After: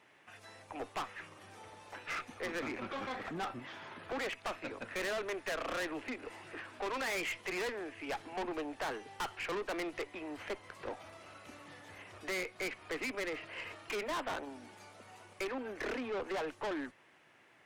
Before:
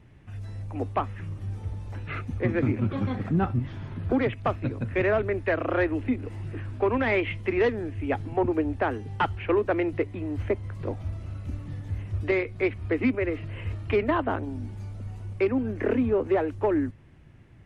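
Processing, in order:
high-pass filter 670 Hz 12 dB per octave
tube saturation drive 38 dB, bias 0.35
level +3.5 dB

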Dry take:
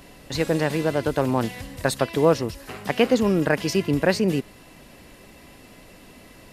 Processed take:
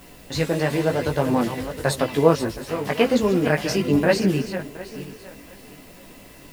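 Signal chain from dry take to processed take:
feedback delay that plays each chunk backwards 360 ms, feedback 47%, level −10.5 dB
background noise blue −54 dBFS
multi-voice chorus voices 4, 0.91 Hz, delay 16 ms, depth 4.9 ms
level +3.5 dB

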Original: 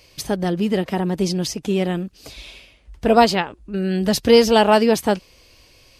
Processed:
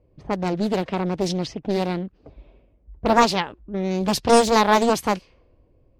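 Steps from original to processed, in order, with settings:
low-pass that shuts in the quiet parts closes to 420 Hz, open at −15 dBFS
highs frequency-modulated by the lows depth 0.59 ms
level −2 dB

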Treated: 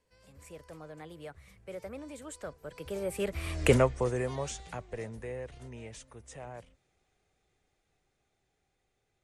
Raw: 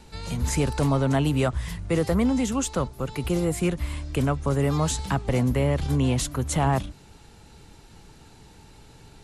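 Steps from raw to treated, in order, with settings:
source passing by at 0:03.66, 41 m/s, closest 4.7 metres
graphic EQ with 10 bands 250 Hz −3 dB, 500 Hz +11 dB, 2,000 Hz +9 dB, 8,000 Hz +6 dB

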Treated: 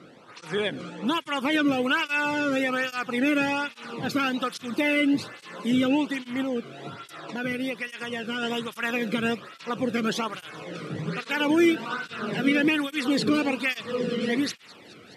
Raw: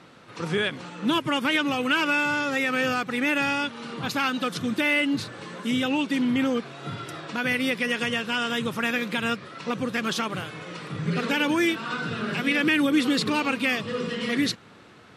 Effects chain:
low-shelf EQ 440 Hz +8.5 dB
0:06.42–0:08.43: downward compressor 1.5 to 1, threshold −31 dBFS, peak gain reduction 5.5 dB
delay with a high-pass on its return 210 ms, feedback 82%, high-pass 2,400 Hz, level −20 dB
through-zero flanger with one copy inverted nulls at 1.2 Hz, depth 1.2 ms

